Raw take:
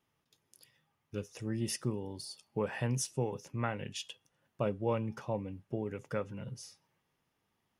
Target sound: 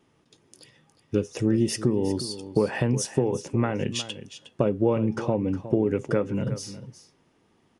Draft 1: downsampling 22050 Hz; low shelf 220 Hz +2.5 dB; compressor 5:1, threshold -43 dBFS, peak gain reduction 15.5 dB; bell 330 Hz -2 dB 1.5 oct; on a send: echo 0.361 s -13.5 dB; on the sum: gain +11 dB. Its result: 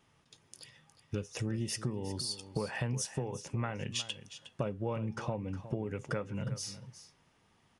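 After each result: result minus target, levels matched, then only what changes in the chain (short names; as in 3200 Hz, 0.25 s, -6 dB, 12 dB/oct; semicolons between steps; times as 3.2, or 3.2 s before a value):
compressor: peak gain reduction +6.5 dB; 250 Hz band -3.0 dB
change: compressor 5:1, threshold -35 dBFS, peak gain reduction 9 dB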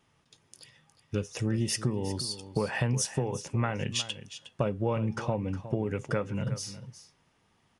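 250 Hz band -2.5 dB
change: bell 330 Hz +9 dB 1.5 oct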